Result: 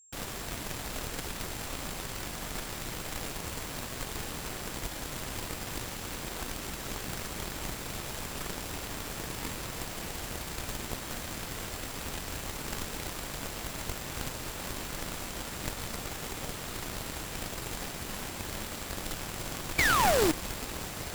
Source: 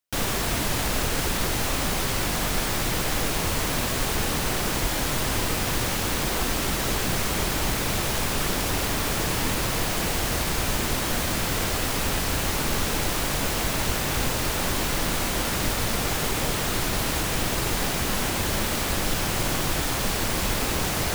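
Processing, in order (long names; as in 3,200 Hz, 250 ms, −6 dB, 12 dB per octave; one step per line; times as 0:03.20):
sound drawn into the spectrogram fall, 0:19.78–0:20.32, 290–2,400 Hz −18 dBFS
steady tone 7,500 Hz −40 dBFS
harmonic generator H 3 −11 dB, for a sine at −8.5 dBFS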